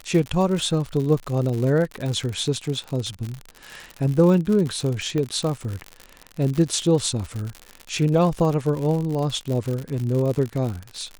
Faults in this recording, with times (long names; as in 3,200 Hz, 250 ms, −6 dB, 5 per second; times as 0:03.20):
surface crackle 82 per second −26 dBFS
0:05.18: click −15 dBFS